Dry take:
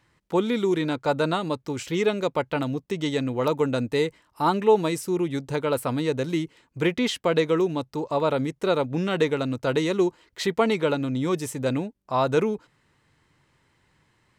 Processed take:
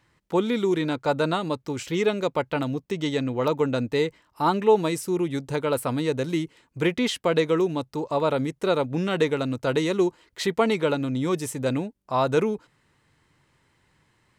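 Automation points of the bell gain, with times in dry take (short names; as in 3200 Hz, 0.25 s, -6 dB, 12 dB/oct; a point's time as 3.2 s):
bell 9900 Hz 0.58 oct
2.84 s -0.5 dB
3.31 s -7 dB
3.98 s -7 dB
5.14 s +2.5 dB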